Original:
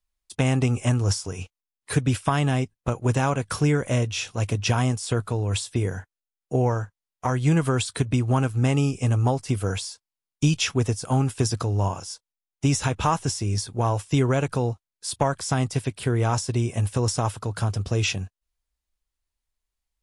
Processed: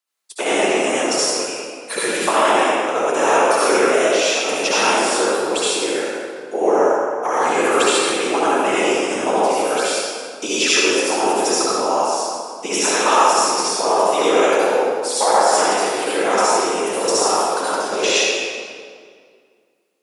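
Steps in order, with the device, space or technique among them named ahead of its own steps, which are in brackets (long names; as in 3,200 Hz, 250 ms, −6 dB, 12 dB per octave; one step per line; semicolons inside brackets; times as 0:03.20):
whispering ghost (random phases in short frames; high-pass filter 400 Hz 24 dB per octave; convolution reverb RT60 2.0 s, pre-delay 58 ms, DRR −9 dB)
level +3.5 dB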